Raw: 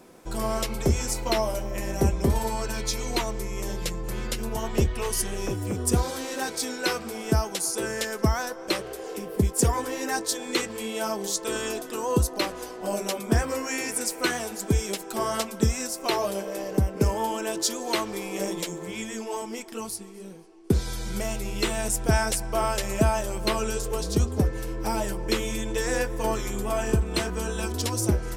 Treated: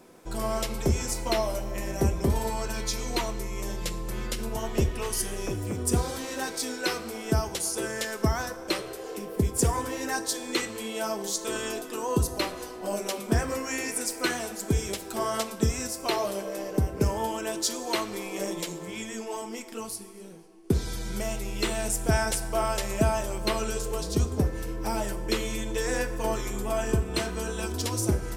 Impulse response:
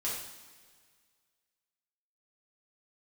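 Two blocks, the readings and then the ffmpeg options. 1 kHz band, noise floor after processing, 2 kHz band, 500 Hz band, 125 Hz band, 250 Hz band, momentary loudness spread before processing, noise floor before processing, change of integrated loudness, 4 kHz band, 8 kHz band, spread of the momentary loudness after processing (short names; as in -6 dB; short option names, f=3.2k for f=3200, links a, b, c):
-2.0 dB, -41 dBFS, -1.5 dB, -2.0 dB, -2.0 dB, -2.0 dB, 7 LU, -40 dBFS, -2.0 dB, -2.0 dB, -2.0 dB, 7 LU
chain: -filter_complex "[0:a]asplit=2[a][b];[1:a]atrim=start_sample=2205[c];[b][c]afir=irnorm=-1:irlink=0,volume=-12.5dB[d];[a][d]amix=inputs=2:normalize=0,volume=-3.5dB"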